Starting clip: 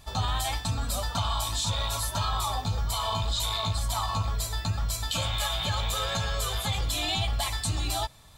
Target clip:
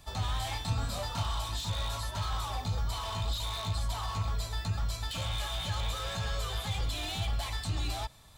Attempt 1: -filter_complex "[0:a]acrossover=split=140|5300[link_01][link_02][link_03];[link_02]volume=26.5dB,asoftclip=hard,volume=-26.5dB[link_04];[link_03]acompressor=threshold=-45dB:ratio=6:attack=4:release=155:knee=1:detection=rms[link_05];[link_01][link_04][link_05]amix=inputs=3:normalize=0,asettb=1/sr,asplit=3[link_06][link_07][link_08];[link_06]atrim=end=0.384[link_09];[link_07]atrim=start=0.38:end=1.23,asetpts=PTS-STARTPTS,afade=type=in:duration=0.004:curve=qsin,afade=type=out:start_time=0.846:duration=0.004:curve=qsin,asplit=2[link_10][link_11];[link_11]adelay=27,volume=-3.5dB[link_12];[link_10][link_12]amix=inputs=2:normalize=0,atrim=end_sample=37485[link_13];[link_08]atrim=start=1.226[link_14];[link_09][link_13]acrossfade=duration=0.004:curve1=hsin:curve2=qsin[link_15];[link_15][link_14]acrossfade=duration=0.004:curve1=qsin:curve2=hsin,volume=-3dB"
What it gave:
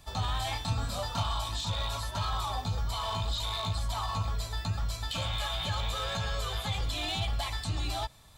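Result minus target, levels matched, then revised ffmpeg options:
gain into a clipping stage and back: distortion −9 dB
-filter_complex "[0:a]acrossover=split=140|5300[link_01][link_02][link_03];[link_02]volume=33dB,asoftclip=hard,volume=-33dB[link_04];[link_03]acompressor=threshold=-45dB:ratio=6:attack=4:release=155:knee=1:detection=rms[link_05];[link_01][link_04][link_05]amix=inputs=3:normalize=0,asettb=1/sr,asplit=3[link_06][link_07][link_08];[link_06]atrim=end=0.384[link_09];[link_07]atrim=start=0.38:end=1.23,asetpts=PTS-STARTPTS,afade=type=in:duration=0.004:curve=qsin,afade=type=out:start_time=0.846:duration=0.004:curve=qsin,asplit=2[link_10][link_11];[link_11]adelay=27,volume=-3.5dB[link_12];[link_10][link_12]amix=inputs=2:normalize=0,atrim=end_sample=37485[link_13];[link_08]atrim=start=1.226[link_14];[link_09][link_13]acrossfade=duration=0.004:curve1=hsin:curve2=qsin[link_15];[link_15][link_14]acrossfade=duration=0.004:curve1=qsin:curve2=hsin,volume=-3dB"

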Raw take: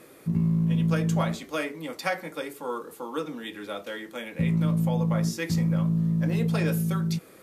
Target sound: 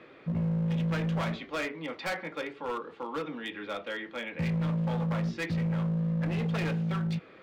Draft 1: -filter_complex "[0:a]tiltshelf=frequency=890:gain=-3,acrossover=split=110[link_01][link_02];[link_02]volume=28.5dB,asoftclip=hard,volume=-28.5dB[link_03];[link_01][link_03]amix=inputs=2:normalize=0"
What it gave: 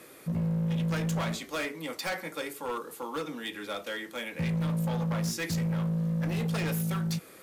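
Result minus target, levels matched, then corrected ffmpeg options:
4,000 Hz band +3.5 dB
-filter_complex "[0:a]lowpass=frequency=3300:width=0.5412,lowpass=frequency=3300:width=1.3066,tiltshelf=frequency=890:gain=-3,acrossover=split=110[link_01][link_02];[link_02]volume=28.5dB,asoftclip=hard,volume=-28.5dB[link_03];[link_01][link_03]amix=inputs=2:normalize=0"

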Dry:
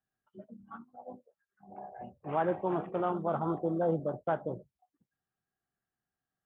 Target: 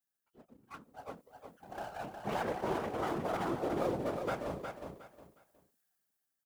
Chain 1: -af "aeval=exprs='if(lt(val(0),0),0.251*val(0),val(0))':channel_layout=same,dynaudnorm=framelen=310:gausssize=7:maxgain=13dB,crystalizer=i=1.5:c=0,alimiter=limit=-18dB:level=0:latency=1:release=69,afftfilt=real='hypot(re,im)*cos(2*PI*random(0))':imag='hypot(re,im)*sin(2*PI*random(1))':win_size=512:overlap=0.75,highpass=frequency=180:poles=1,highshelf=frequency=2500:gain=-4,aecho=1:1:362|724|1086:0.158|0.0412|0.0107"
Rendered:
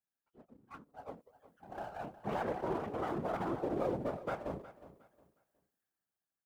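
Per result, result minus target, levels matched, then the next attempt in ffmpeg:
echo-to-direct −10 dB; 4,000 Hz band −6.0 dB
-af "aeval=exprs='if(lt(val(0),0),0.251*val(0),val(0))':channel_layout=same,dynaudnorm=framelen=310:gausssize=7:maxgain=13dB,crystalizer=i=1.5:c=0,alimiter=limit=-18dB:level=0:latency=1:release=69,afftfilt=real='hypot(re,im)*cos(2*PI*random(0))':imag='hypot(re,im)*sin(2*PI*random(1))':win_size=512:overlap=0.75,highpass=frequency=180:poles=1,highshelf=frequency=2500:gain=-4,aecho=1:1:362|724|1086:0.501|0.13|0.0339"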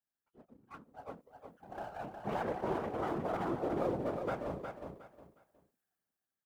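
4,000 Hz band −6.0 dB
-af "aeval=exprs='if(lt(val(0),0),0.251*val(0),val(0))':channel_layout=same,dynaudnorm=framelen=310:gausssize=7:maxgain=13dB,crystalizer=i=1.5:c=0,alimiter=limit=-18dB:level=0:latency=1:release=69,afftfilt=real='hypot(re,im)*cos(2*PI*random(0))':imag='hypot(re,im)*sin(2*PI*random(1))':win_size=512:overlap=0.75,highpass=frequency=180:poles=1,highshelf=frequency=2500:gain=6,aecho=1:1:362|724|1086:0.501|0.13|0.0339"

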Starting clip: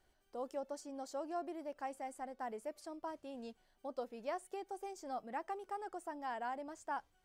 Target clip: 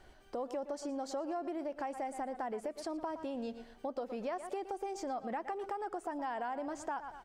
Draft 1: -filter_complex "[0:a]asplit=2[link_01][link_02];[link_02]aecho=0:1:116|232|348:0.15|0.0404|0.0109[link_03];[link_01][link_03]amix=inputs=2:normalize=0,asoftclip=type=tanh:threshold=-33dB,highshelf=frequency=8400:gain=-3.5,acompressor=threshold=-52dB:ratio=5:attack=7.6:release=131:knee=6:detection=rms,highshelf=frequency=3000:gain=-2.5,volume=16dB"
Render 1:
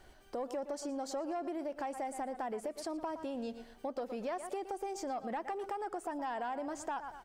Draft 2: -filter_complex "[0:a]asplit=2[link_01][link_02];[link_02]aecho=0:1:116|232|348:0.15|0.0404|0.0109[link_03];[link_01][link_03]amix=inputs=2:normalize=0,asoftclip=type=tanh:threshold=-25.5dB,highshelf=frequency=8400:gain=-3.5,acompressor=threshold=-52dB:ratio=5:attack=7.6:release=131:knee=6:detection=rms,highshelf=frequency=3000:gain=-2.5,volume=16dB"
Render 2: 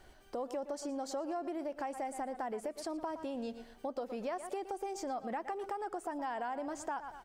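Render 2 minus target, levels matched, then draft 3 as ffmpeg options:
8,000 Hz band +3.0 dB
-filter_complex "[0:a]asplit=2[link_01][link_02];[link_02]aecho=0:1:116|232|348:0.15|0.0404|0.0109[link_03];[link_01][link_03]amix=inputs=2:normalize=0,asoftclip=type=tanh:threshold=-25.5dB,highshelf=frequency=8400:gain=-12,acompressor=threshold=-52dB:ratio=5:attack=7.6:release=131:knee=6:detection=rms,highshelf=frequency=3000:gain=-2.5,volume=16dB"

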